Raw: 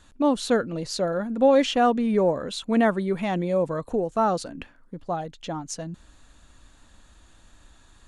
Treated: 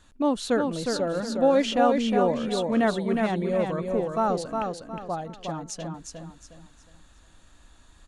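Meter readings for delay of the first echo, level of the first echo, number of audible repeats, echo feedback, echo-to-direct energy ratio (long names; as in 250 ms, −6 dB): 361 ms, −4.5 dB, 4, 32%, −4.0 dB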